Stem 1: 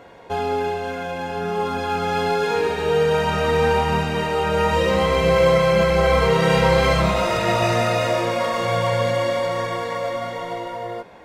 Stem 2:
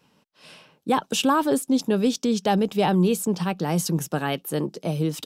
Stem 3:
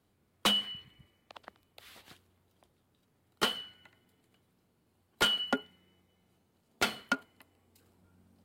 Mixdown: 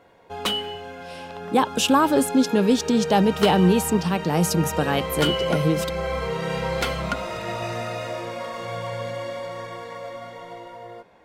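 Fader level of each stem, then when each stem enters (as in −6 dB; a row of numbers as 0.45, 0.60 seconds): −10.0, +2.5, +2.0 decibels; 0.00, 0.65, 0.00 seconds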